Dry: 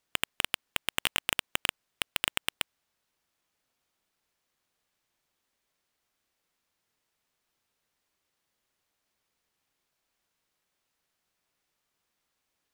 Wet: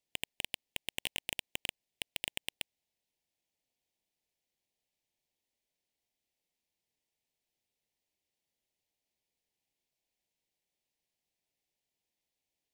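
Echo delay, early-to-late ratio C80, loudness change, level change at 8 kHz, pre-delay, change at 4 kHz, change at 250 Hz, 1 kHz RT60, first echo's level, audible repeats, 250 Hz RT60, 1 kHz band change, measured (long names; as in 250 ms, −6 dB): no echo audible, no reverb audible, −8.0 dB, −7.5 dB, no reverb audible, −7.5 dB, −7.5 dB, no reverb audible, no echo audible, no echo audible, no reverb audible, −14.5 dB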